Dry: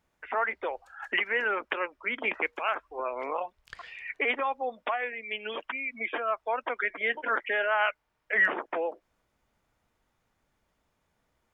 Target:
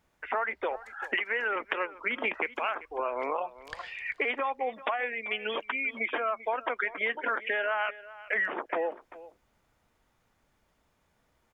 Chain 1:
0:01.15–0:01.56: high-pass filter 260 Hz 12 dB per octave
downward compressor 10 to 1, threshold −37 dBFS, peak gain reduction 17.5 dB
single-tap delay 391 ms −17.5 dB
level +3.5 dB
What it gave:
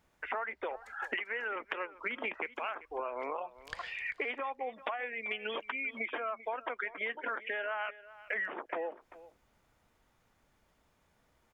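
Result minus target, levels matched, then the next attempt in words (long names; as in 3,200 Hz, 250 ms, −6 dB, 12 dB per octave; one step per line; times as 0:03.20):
downward compressor: peak gain reduction +7 dB
0:01.15–0:01.56: high-pass filter 260 Hz 12 dB per octave
downward compressor 10 to 1, threshold −29.5 dBFS, peak gain reduction 10.5 dB
single-tap delay 391 ms −17.5 dB
level +3.5 dB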